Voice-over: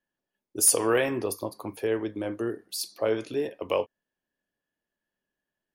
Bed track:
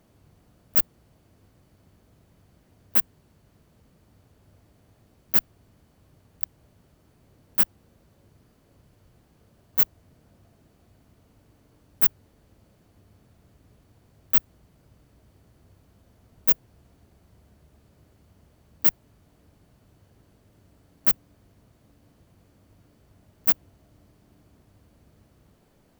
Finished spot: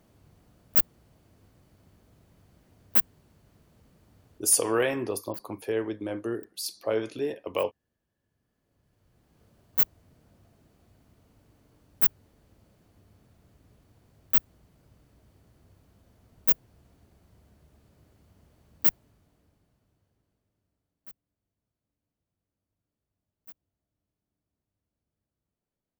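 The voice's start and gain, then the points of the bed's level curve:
3.85 s, -1.5 dB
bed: 4.37 s -1 dB
4.59 s -23.5 dB
8.16 s -23.5 dB
9.42 s -2.5 dB
18.89 s -2.5 dB
21.20 s -28.5 dB

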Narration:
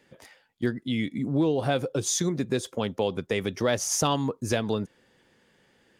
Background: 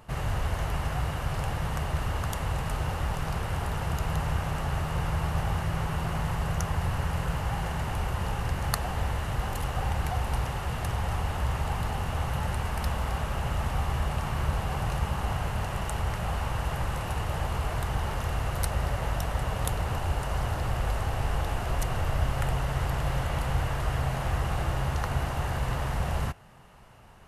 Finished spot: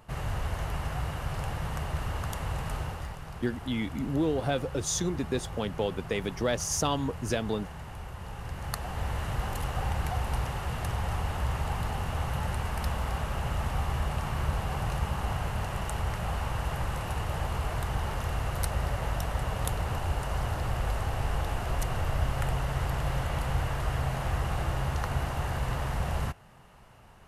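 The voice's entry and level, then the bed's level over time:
2.80 s, -3.5 dB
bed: 2.77 s -3 dB
3.20 s -11 dB
8.19 s -11 dB
9.22 s -1.5 dB

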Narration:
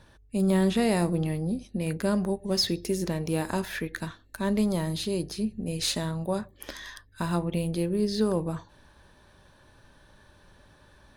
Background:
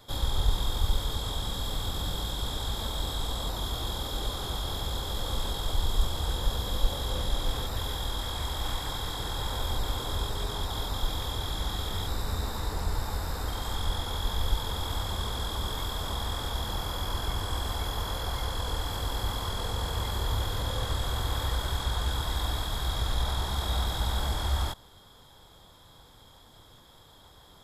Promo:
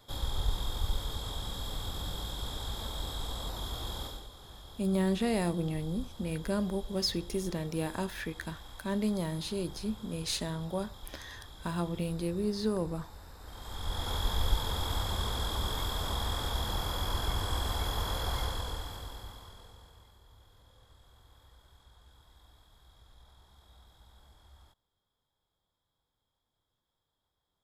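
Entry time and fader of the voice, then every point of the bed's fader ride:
4.45 s, -5.5 dB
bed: 4.05 s -5.5 dB
4.28 s -17.5 dB
13.38 s -17.5 dB
14.09 s -1 dB
18.41 s -1 dB
20.20 s -30 dB

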